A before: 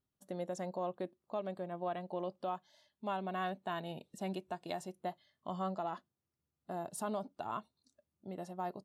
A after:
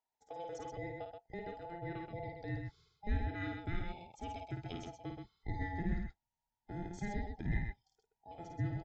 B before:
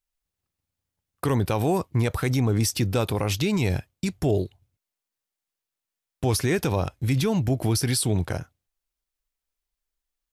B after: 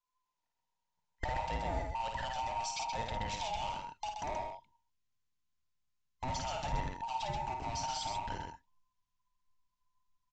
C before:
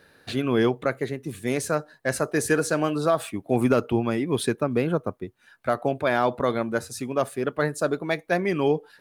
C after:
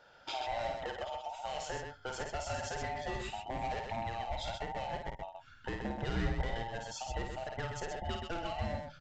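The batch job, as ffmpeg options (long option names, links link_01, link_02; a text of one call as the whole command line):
ffmpeg -i in.wav -af "afftfilt=real='real(if(between(b,1,1008),(2*floor((b-1)/48)+1)*48-b,b),0)':imag='imag(if(between(b,1,1008),(2*floor((b-1)/48)+1)*48-b,b),0)*if(between(b,1,1008),-1,1)':win_size=2048:overlap=0.75,adynamicequalizer=threshold=0.00251:dfrequency=3100:dqfactor=5.3:tfrequency=3100:tqfactor=5.3:attack=5:release=100:ratio=0.375:range=2:mode=boostabove:tftype=bell,aresample=16000,volume=20dB,asoftclip=hard,volume=-20dB,aresample=44100,acompressor=threshold=-31dB:ratio=6,aecho=1:1:52.48|128.3:0.562|0.562,asubboost=boost=10:cutoff=140,volume=-5.5dB" out.wav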